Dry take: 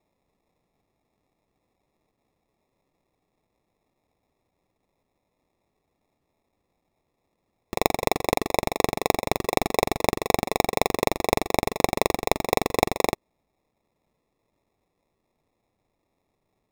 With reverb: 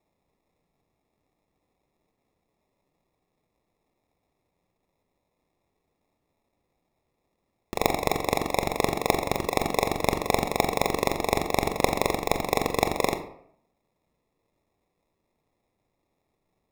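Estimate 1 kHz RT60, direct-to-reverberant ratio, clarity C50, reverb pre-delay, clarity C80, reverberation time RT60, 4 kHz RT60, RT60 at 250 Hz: 0.65 s, 7.5 dB, 10.5 dB, 23 ms, 13.5 dB, 0.70 s, 0.40 s, 0.70 s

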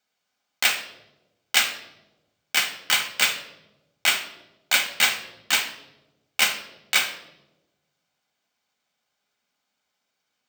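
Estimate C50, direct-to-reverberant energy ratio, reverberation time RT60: 10.0 dB, 4.5 dB, 1.0 s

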